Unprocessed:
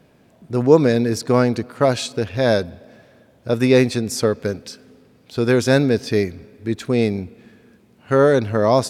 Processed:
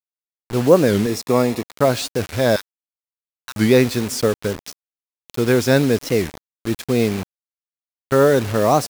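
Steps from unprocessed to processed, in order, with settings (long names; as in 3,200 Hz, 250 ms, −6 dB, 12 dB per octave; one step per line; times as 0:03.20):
0:02.56–0:03.58: Butterworth high-pass 880 Hz 72 dB per octave
0:07.23–0:08.12: downward compressor, threshold −42 dBFS, peak gain reduction 15 dB
bit reduction 5 bits
0:01.06–0:01.71: notch comb filter 1,500 Hz
wow of a warped record 45 rpm, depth 250 cents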